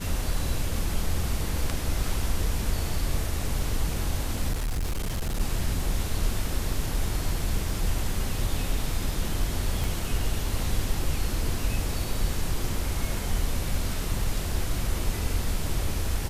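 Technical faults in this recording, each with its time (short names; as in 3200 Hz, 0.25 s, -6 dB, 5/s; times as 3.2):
4.52–5.41 clipped -24.5 dBFS
9.84 pop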